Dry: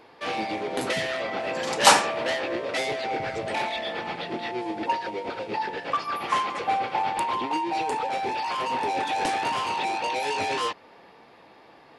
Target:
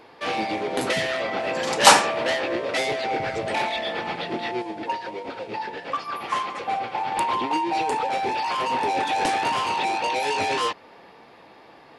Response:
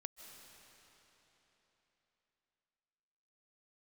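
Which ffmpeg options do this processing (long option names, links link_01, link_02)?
-filter_complex "[0:a]asettb=1/sr,asplit=3[link_01][link_02][link_03];[link_01]atrim=end=4.624[link_04];[link_02]atrim=start=4.62:end=7.12,asetpts=PTS-STARTPTS,afade=type=in:duration=0.004:curve=qsin,afade=type=out:start_time=2.496:duration=0.004:curve=qsin,flanger=delay=3.6:depth=6:regen=73:speed=1.5:shape=sinusoidal[link_05];[link_03]atrim=start=7.116[link_06];[link_04][link_05]acrossfade=duration=0.004:curve1=hsin:curve2=qsin[link_07];[link_07][link_06]acrossfade=duration=0.004:curve1=qsin:curve2=hsin,volume=3dB"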